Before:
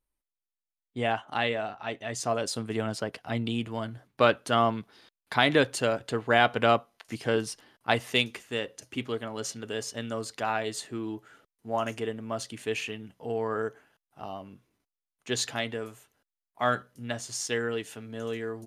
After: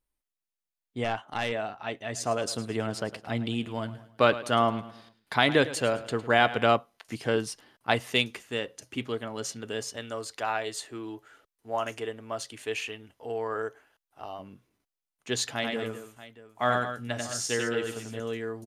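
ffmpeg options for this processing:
ffmpeg -i in.wav -filter_complex "[0:a]asettb=1/sr,asplit=3[link_01][link_02][link_03];[link_01]atrim=end=1.044[link_04];[link_02]atrim=start=1.04:end=1.52,asetpts=PTS-STARTPTS,afade=type=in:duration=0.004:curve=qsin,afade=type=out:start_time=0.476:duration=0.004:curve=qsin,aeval=exprs='(tanh(11.2*val(0)+0.45)-tanh(0.45))/11.2':channel_layout=same[link_05];[link_03]atrim=start=1.516[link_06];[link_04][link_05]acrossfade=duration=0.004:curve1=hsin:curve2=qsin[link_07];[link_07][link_06]acrossfade=duration=0.004:curve1=qsin:curve2=hsin,asplit=3[link_08][link_09][link_10];[link_08]afade=type=out:start_time=2.07:duration=0.02[link_11];[link_09]aecho=1:1:107|214|321|428:0.168|0.0688|0.0282|0.0116,afade=type=in:start_time=2.07:duration=0.02,afade=type=out:start_time=6.63:duration=0.02[link_12];[link_10]afade=type=in:start_time=6.63:duration=0.02[link_13];[link_11][link_12][link_13]amix=inputs=3:normalize=0,asettb=1/sr,asplit=3[link_14][link_15][link_16];[link_14]atrim=end=9.964[link_17];[link_15]atrim=start=9.96:end=14.39,asetpts=PTS-STARTPTS,afade=type=in:duration=0.004:curve=qsin,afade=type=out:start_time=4.426:duration=0.004:curve=qsin,equalizer=frequency=170:width_type=o:width=0.95:gain=-14.5[link_18];[link_16]atrim=start=14.386[link_19];[link_17][link_18]acrossfade=duration=0.004:curve1=hsin:curve2=qsin[link_20];[link_20][link_19]acrossfade=duration=0.004:curve1=qsin:curve2=hsin,asettb=1/sr,asplit=3[link_21][link_22][link_23];[link_21]atrim=end=15.534[link_24];[link_22]atrim=start=15.53:end=18.2,asetpts=PTS-STARTPTS,afade=type=in:duration=0.004:curve=qsin,afade=type=out:start_time=2.666:duration=0.004:curve=qsin,aecho=1:1:91|213|634:0.708|0.316|0.15,atrim=end_sample=117747[link_25];[link_23]atrim=start=18.196[link_26];[link_24][link_25]acrossfade=duration=0.004:curve1=hsin:curve2=qsin[link_27];[link_27][link_26]acrossfade=duration=0.004:curve1=qsin:curve2=hsin" out.wav

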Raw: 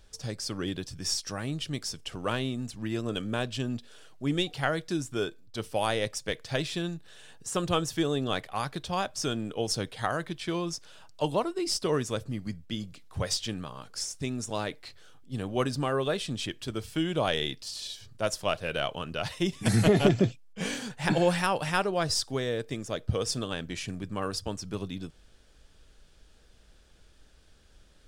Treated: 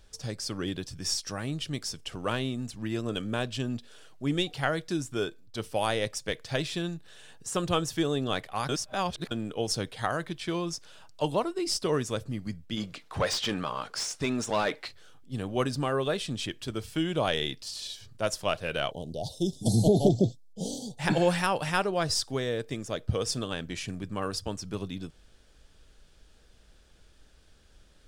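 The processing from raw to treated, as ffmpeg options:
ffmpeg -i in.wav -filter_complex "[0:a]asplit=3[link_01][link_02][link_03];[link_01]afade=type=out:start_time=12.76:duration=0.02[link_04];[link_02]asplit=2[link_05][link_06];[link_06]highpass=frequency=720:poles=1,volume=20dB,asoftclip=type=tanh:threshold=-15.5dB[link_07];[link_05][link_07]amix=inputs=2:normalize=0,lowpass=frequency=2200:poles=1,volume=-6dB,afade=type=in:start_time=12.76:duration=0.02,afade=type=out:start_time=14.86:duration=0.02[link_08];[link_03]afade=type=in:start_time=14.86:duration=0.02[link_09];[link_04][link_08][link_09]amix=inputs=3:normalize=0,asettb=1/sr,asplit=3[link_10][link_11][link_12];[link_10]atrim=end=18.914[link_13];[link_11]atrim=start=18.91:end=20.99,asetpts=PTS-STARTPTS,afade=type=in:duration=0.004:curve=qsin,afade=type=out:start_time=2.076:duration=0.004:curve=qsin,asuperstop=centerf=1700:order=12:qfactor=0.62[link_14];[link_12]atrim=start=20.986[link_15];[link_13][link_14]acrossfade=duration=0.004:curve1=hsin:curve2=qsin[link_16];[link_16][link_15]acrossfade=duration=0.004:curve1=qsin:curve2=hsin,asplit=3[link_17][link_18][link_19];[link_17]atrim=end=8.692[link_20];[link_18]atrim=start=8.688:end=9.312,asetpts=PTS-STARTPTS,areverse[link_21];[link_19]atrim=start=9.308[link_22];[link_20][link_21]acrossfade=duration=0.004:curve1=hsin:curve2=hsin[link_23];[link_23][link_22]acrossfade=duration=0.004:curve1=hsin:curve2=hsin" out.wav

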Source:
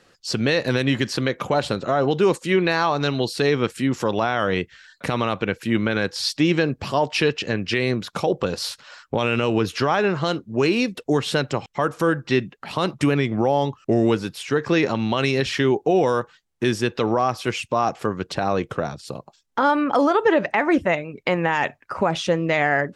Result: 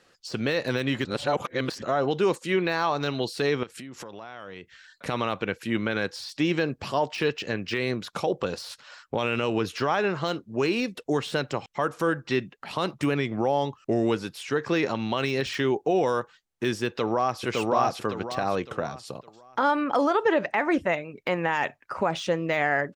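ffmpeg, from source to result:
ffmpeg -i in.wav -filter_complex "[0:a]asettb=1/sr,asplit=3[link_01][link_02][link_03];[link_01]atrim=end=3.634[link_04];[link_02]atrim=start=3.63:end=5.06,asetpts=PTS-STARTPTS,afade=type=in:duration=0.004:curve=qsin,afade=type=out:start_time=1.426:duration=0.004:curve=qsin,acompressor=threshold=-31dB:ratio=10:attack=3.2:release=140:knee=1:detection=peak[link_05];[link_03]atrim=start=5.056[link_06];[link_04][link_05]acrossfade=duration=0.004:curve1=hsin:curve2=qsin[link_07];[link_07][link_06]acrossfade=duration=0.004:curve1=qsin:curve2=hsin,asplit=2[link_08][link_09];[link_09]afade=type=in:start_time=16.87:duration=0.01,afade=type=out:start_time=17.43:duration=0.01,aecho=0:1:560|1120|1680|2240|2800:0.944061|0.330421|0.115647|0.0404766|0.0141668[link_10];[link_08][link_10]amix=inputs=2:normalize=0,asplit=3[link_11][link_12][link_13];[link_11]atrim=end=1.052[link_14];[link_12]atrim=start=1.048:end=1.822,asetpts=PTS-STARTPTS,areverse[link_15];[link_13]atrim=start=1.818[link_16];[link_14][link_15]acrossfade=duration=0.004:curve1=hsin:curve2=hsin[link_17];[link_17][link_16]acrossfade=duration=0.004:curve1=hsin:curve2=hsin,deesser=0.7,lowshelf=frequency=270:gain=-5,volume=-3.5dB" out.wav

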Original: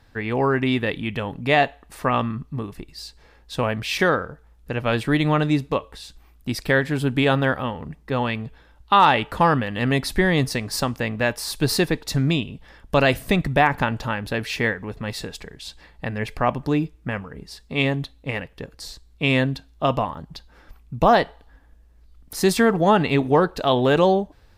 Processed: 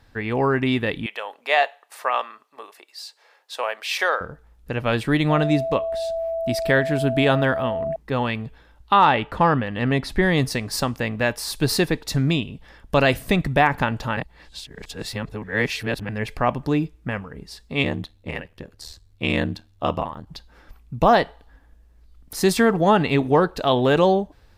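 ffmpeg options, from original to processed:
ffmpeg -i in.wav -filter_complex "[0:a]asettb=1/sr,asplit=3[link_01][link_02][link_03];[link_01]atrim=end=1.064[link_04];[link_02]atrim=start=1.06:end=4.21,asetpts=PTS-STARTPTS,afade=type=in:duration=0.004:curve=qsin,afade=type=out:start_time=3.146:duration=0.004:curve=qsin,highpass=frequency=540:width=0.5412,highpass=frequency=540:width=1.3066[link_05];[link_03]atrim=start=4.206[link_06];[link_04][link_05]acrossfade=duration=0.004:curve1=hsin:curve2=qsin[link_07];[link_07][link_06]acrossfade=duration=0.004:curve1=qsin:curve2=hsin,asettb=1/sr,asplit=3[link_08][link_09][link_10];[link_08]atrim=end=5.304[link_11];[link_09]atrim=start=5.3:end=7.96,asetpts=PTS-STARTPTS,afade=type=in:duration=0.004:curve=qsin,afade=type=out:start_time=2.656:duration=0.004:curve=qsin,aeval=exprs='val(0)+0.0708*sin(2*PI*660*n/s)':channel_layout=same[link_12];[link_10]atrim=start=7.956[link_13];[link_11][link_12]acrossfade=duration=0.004:curve1=hsin:curve2=qsin[link_14];[link_14][link_13]acrossfade=duration=0.004:curve1=qsin:curve2=hsin,asettb=1/sr,asplit=3[link_15][link_16][link_17];[link_15]atrim=end=8.934[link_18];[link_16]atrim=start=8.93:end=10.23,asetpts=PTS-STARTPTS,afade=type=in:duration=0.004:curve=qsin,afade=type=out:start_time=1.296:duration=0.004:curve=qsin,lowpass=frequency=3000:poles=1[link_19];[link_17]atrim=start=10.226[link_20];[link_18][link_19]acrossfade=duration=0.004:curve1=hsin:curve2=qsin[link_21];[link_21][link_20]acrossfade=duration=0.004:curve1=qsin:curve2=hsin,asettb=1/sr,asplit=3[link_22][link_23][link_24];[link_22]atrim=end=17.834[link_25];[link_23]atrim=start=17.83:end=20.27,asetpts=PTS-STARTPTS,afade=type=in:duration=0.004:curve=qsin,afade=type=out:start_time=2.436:duration=0.004:curve=qsin,aeval=exprs='val(0)*sin(2*PI*39*n/s)':channel_layout=same[link_26];[link_24]atrim=start=20.266[link_27];[link_25][link_26]acrossfade=duration=0.004:curve1=hsin:curve2=qsin[link_28];[link_28][link_27]acrossfade=duration=0.004:curve1=qsin:curve2=hsin,asplit=3[link_29][link_30][link_31];[link_29]atrim=end=14.172[link_32];[link_30]atrim=start=14.168:end=16.092,asetpts=PTS-STARTPTS,areverse[link_33];[link_31]atrim=start=16.088[link_34];[link_32][link_33]acrossfade=duration=0.004:curve1=hsin:curve2=hsin[link_35];[link_35][link_34]acrossfade=duration=0.004:curve1=hsin:curve2=hsin" out.wav

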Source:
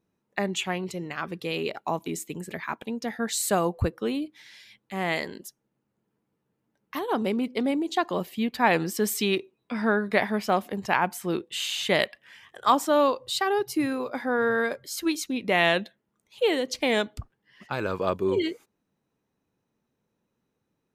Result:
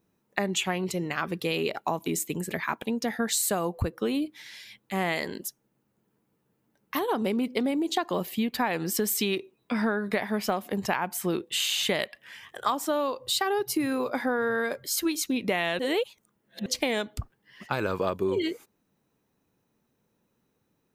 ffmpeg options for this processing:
ffmpeg -i in.wav -filter_complex "[0:a]asplit=3[link_01][link_02][link_03];[link_01]atrim=end=15.792[link_04];[link_02]atrim=start=15.788:end=16.662,asetpts=PTS-STARTPTS,areverse[link_05];[link_03]atrim=start=16.658[link_06];[link_04][link_05]acrossfade=duration=0.004:curve1=hsin:curve2=hsin[link_07];[link_07][link_06]acrossfade=duration=0.004:curve1=hsin:curve2=hsin,highshelf=frequency=12000:gain=10,acompressor=threshold=-27dB:ratio=12,volume=4dB" out.wav

